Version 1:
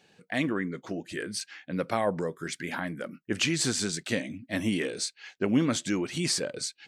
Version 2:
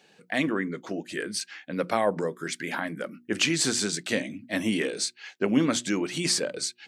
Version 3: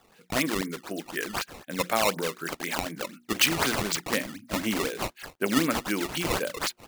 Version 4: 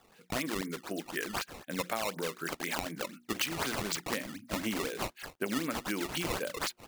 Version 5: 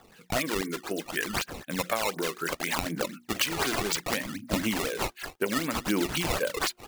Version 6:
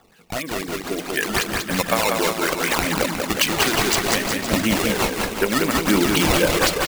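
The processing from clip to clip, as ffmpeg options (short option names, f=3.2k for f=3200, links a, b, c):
-af "highpass=170,bandreject=f=60:t=h:w=6,bandreject=f=120:t=h:w=6,bandreject=f=180:t=h:w=6,bandreject=f=240:t=h:w=6,bandreject=f=300:t=h:w=6,bandreject=f=360:t=h:w=6,volume=3dB"
-af "acrusher=samples=16:mix=1:aa=0.000001:lfo=1:lforange=25.6:lforate=4,tiltshelf=f=830:g=-3.5"
-af "acompressor=threshold=-27dB:ratio=6,volume=-2.5dB"
-af "aphaser=in_gain=1:out_gain=1:delay=3:decay=0.4:speed=0.67:type=triangular,volume=5dB"
-filter_complex "[0:a]dynaudnorm=f=620:g=3:m=10.5dB,asplit=2[a][b];[b]aecho=0:1:190|361|514.9|653.4|778.1:0.631|0.398|0.251|0.158|0.1[c];[a][c]amix=inputs=2:normalize=0"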